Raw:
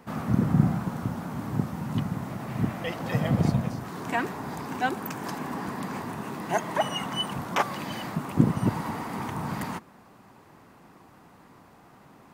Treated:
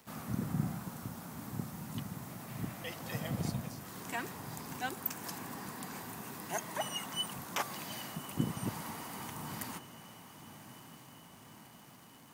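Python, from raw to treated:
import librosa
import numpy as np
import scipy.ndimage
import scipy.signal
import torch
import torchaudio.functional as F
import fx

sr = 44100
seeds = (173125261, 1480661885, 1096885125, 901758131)

p1 = F.preemphasis(torch.from_numpy(x), 0.8).numpy()
p2 = fx.dmg_crackle(p1, sr, seeds[0], per_s=190.0, level_db=-50.0)
p3 = p2 + fx.echo_diffused(p2, sr, ms=1173, feedback_pct=65, wet_db=-14.0, dry=0)
y = p3 * librosa.db_to_amplitude(1.0)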